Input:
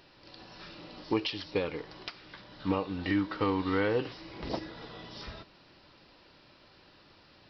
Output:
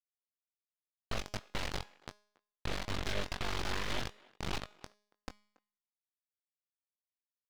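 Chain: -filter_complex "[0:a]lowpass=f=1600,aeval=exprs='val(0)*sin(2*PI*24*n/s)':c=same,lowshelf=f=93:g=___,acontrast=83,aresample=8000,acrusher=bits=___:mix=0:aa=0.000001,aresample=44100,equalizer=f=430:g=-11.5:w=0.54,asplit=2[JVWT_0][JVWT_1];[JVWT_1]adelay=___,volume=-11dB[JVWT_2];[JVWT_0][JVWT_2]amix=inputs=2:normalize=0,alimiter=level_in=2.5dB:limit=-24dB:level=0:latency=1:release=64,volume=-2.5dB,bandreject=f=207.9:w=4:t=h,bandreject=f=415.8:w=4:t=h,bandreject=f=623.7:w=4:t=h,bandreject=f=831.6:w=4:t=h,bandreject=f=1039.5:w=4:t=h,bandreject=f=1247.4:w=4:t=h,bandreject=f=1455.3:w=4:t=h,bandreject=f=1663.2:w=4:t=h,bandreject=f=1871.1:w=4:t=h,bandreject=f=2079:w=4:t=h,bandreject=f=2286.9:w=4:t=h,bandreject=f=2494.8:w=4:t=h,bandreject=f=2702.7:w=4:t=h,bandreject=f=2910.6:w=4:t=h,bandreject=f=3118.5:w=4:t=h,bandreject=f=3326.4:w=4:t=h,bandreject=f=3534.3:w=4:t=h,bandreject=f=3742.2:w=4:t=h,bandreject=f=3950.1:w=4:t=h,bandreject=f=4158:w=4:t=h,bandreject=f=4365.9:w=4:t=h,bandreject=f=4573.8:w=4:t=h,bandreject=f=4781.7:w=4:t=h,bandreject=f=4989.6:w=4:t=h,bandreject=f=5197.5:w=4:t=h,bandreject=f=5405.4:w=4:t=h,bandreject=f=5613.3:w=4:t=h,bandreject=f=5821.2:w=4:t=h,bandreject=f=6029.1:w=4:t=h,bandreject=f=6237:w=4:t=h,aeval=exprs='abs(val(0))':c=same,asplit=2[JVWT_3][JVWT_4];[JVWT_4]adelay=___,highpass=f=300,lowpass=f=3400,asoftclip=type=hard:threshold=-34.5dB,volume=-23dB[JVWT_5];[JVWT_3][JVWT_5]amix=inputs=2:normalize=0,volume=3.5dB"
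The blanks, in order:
-2, 4, 21, 280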